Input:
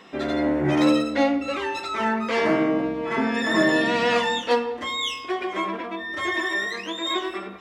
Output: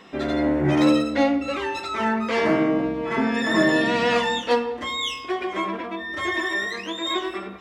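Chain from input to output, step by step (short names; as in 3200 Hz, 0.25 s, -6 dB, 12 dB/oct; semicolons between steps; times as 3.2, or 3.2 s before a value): low shelf 140 Hz +6.5 dB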